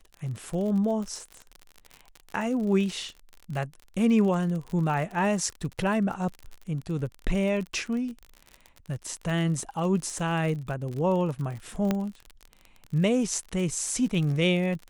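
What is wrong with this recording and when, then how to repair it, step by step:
surface crackle 48 per second −33 dBFS
0:11.91: click −12 dBFS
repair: click removal

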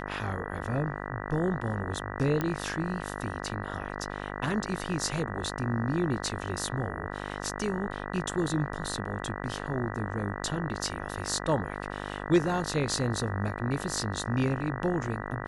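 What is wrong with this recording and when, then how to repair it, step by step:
mains buzz 50 Hz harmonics 39 −37 dBFS
0:02.41: click −16 dBFS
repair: click removal
hum removal 50 Hz, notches 39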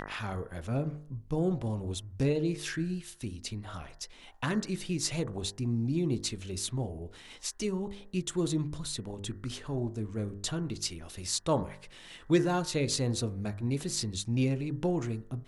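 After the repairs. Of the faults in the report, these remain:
none of them is left

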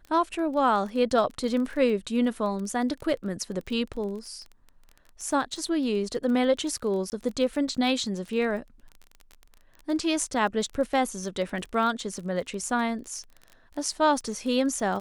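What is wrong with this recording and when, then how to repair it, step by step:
surface crackle 26 per second −34 dBFS
0:07.10–0:07.12: drop-out 19 ms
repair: click removal
repair the gap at 0:07.10, 19 ms

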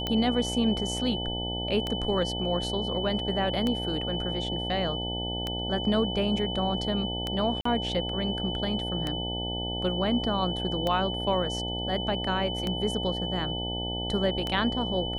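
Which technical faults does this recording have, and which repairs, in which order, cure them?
mains buzz 60 Hz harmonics 15 −34 dBFS
scratch tick 33 1/3 rpm −15 dBFS
whistle 3,000 Hz −33 dBFS
0:07.61–0:07.65: drop-out 44 ms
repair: click removal
hum removal 60 Hz, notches 15
notch filter 3,000 Hz, Q 30
repair the gap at 0:07.61, 44 ms

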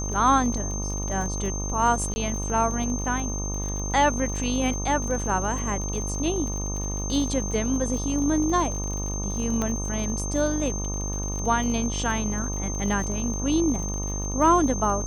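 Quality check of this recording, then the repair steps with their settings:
mains buzz 50 Hz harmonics 25 −30 dBFS
surface crackle 43 per second −31 dBFS
whistle 6,300 Hz −32 dBFS
0:02.14–0:02.16: drop-out 20 ms
0:09.62: click −14 dBFS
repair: click removal
notch filter 6,300 Hz, Q 30
hum removal 50 Hz, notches 25
repair the gap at 0:02.14, 20 ms

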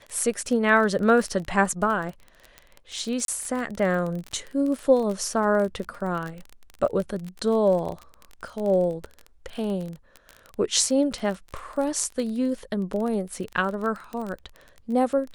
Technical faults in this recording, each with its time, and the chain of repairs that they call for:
surface crackle 26 per second −29 dBFS
0:03.25–0:03.28: drop-out 32 ms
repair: click removal
repair the gap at 0:03.25, 32 ms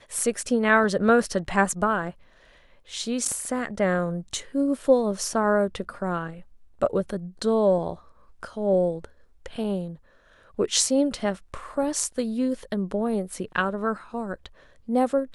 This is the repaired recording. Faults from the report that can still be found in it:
none of them is left

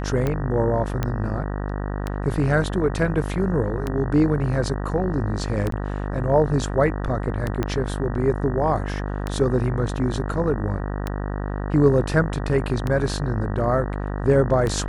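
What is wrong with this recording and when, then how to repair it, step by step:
mains buzz 50 Hz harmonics 38 −27 dBFS
scratch tick 33 1/3 rpm −12 dBFS
0:01.03: click −11 dBFS
0:05.71–0:05.72: drop-out 13 ms
0:07.63: click −11 dBFS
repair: click removal
hum removal 50 Hz, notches 38
repair the gap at 0:05.71, 13 ms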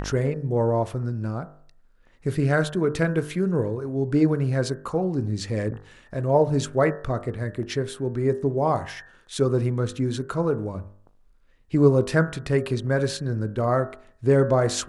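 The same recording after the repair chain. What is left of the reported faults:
0:07.63: click

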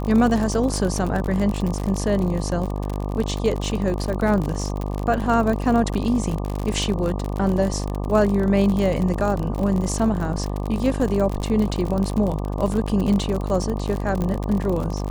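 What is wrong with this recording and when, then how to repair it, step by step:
mains buzz 50 Hz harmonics 24 −26 dBFS
surface crackle 51 per second −24 dBFS
0:14.22: click −14 dBFS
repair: click removal
hum removal 50 Hz, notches 24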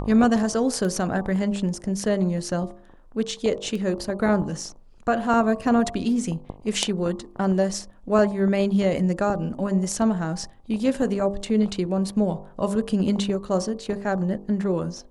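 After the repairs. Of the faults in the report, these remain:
0:14.22: click

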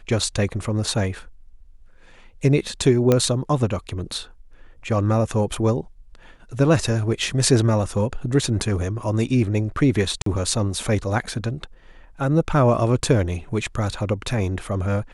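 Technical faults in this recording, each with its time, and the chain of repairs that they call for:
0:03.12: click −5 dBFS
0:10.22–0:10.26: drop-out 43 ms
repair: click removal
repair the gap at 0:10.22, 43 ms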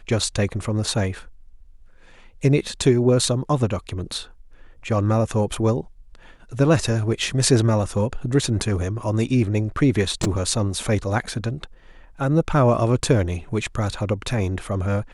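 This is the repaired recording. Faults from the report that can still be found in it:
none of them is left

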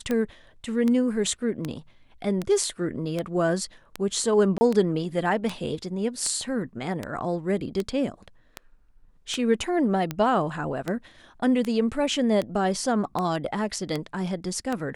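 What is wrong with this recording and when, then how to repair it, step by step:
scratch tick 78 rpm −14 dBFS
0:04.58–0:04.61: drop-out 30 ms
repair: click removal
repair the gap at 0:04.58, 30 ms

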